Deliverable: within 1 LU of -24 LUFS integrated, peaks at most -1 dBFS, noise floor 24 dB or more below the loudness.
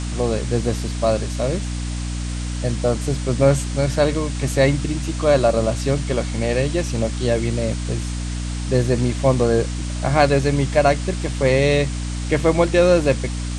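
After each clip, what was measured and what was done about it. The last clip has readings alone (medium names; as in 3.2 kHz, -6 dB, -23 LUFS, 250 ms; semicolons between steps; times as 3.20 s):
hum 60 Hz; highest harmonic 300 Hz; hum level -23 dBFS; noise floor -26 dBFS; noise floor target -44 dBFS; loudness -20.0 LUFS; peak level -3.0 dBFS; loudness target -24.0 LUFS
-> de-hum 60 Hz, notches 5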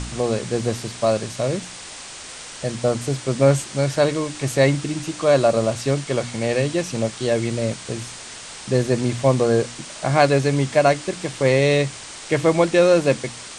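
hum not found; noise floor -37 dBFS; noise floor target -45 dBFS
-> noise reduction 8 dB, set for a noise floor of -37 dBFS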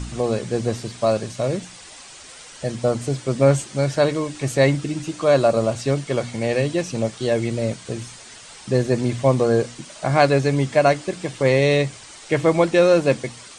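noise floor -42 dBFS; noise floor target -45 dBFS
-> noise reduction 6 dB, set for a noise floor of -42 dBFS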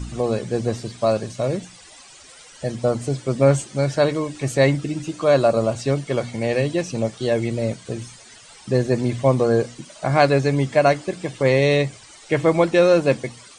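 noise floor -46 dBFS; loudness -20.5 LUFS; peak level -3.0 dBFS; loudness target -24.0 LUFS
-> trim -3.5 dB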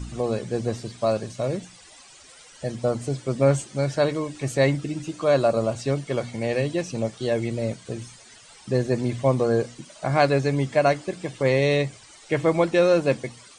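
loudness -24.0 LUFS; peak level -6.5 dBFS; noise floor -49 dBFS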